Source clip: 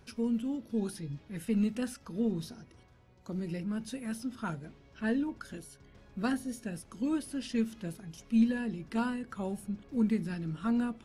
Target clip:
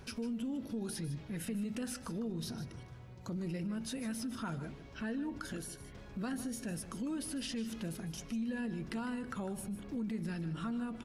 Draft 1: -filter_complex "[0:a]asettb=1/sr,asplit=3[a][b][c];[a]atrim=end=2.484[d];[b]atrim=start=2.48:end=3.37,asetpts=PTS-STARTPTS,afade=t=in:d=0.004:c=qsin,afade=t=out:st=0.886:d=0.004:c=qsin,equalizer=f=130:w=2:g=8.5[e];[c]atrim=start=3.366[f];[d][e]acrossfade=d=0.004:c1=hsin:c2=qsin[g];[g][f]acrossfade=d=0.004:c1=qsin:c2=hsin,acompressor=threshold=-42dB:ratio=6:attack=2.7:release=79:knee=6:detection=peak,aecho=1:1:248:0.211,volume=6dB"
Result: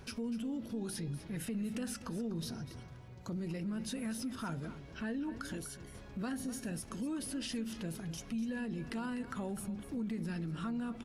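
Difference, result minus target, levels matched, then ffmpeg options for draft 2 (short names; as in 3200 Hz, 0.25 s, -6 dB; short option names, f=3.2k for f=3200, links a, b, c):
echo 96 ms late
-filter_complex "[0:a]asettb=1/sr,asplit=3[a][b][c];[a]atrim=end=2.484[d];[b]atrim=start=2.48:end=3.37,asetpts=PTS-STARTPTS,afade=t=in:d=0.004:c=qsin,afade=t=out:st=0.886:d=0.004:c=qsin,equalizer=f=130:w=2:g=8.5[e];[c]atrim=start=3.366[f];[d][e]acrossfade=d=0.004:c1=hsin:c2=qsin[g];[g][f]acrossfade=d=0.004:c1=qsin:c2=hsin,acompressor=threshold=-42dB:ratio=6:attack=2.7:release=79:knee=6:detection=peak,aecho=1:1:152:0.211,volume=6dB"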